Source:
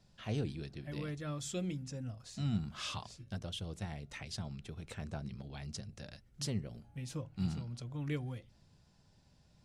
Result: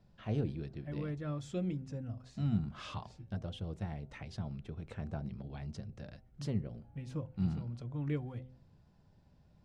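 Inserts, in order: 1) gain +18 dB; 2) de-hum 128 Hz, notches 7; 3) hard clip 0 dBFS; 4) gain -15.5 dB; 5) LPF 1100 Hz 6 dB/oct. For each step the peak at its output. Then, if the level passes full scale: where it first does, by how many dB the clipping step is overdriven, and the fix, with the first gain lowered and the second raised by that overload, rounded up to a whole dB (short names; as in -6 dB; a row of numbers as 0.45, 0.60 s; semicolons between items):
-7.0, -6.0, -6.0, -21.5, -22.0 dBFS; no overload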